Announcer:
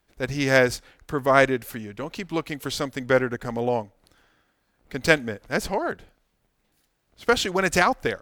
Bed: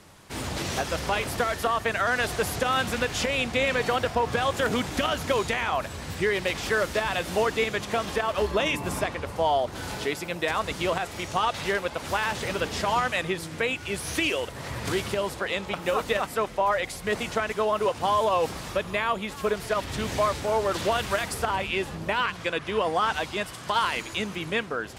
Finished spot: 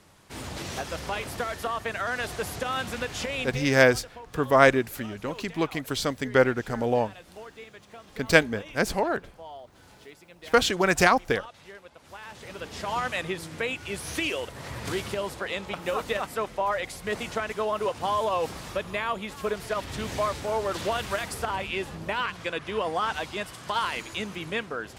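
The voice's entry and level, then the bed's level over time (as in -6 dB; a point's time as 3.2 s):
3.25 s, 0.0 dB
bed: 3.43 s -5 dB
3.79 s -19.5 dB
12.01 s -19.5 dB
13.06 s -3 dB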